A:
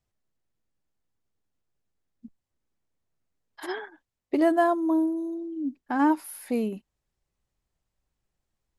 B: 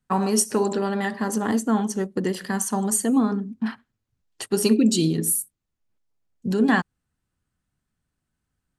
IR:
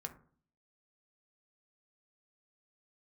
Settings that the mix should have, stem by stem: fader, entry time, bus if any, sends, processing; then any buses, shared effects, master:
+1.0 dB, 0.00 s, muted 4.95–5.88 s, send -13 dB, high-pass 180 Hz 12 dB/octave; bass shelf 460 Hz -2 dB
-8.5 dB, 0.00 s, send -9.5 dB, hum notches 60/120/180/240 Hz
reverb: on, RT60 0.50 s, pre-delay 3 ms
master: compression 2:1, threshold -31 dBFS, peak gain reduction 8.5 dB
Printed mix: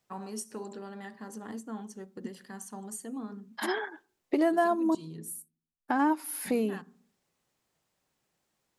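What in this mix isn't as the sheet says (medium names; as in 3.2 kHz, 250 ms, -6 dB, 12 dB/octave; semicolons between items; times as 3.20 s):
stem A +1.0 dB -> +7.0 dB; stem B -8.5 dB -> -19.5 dB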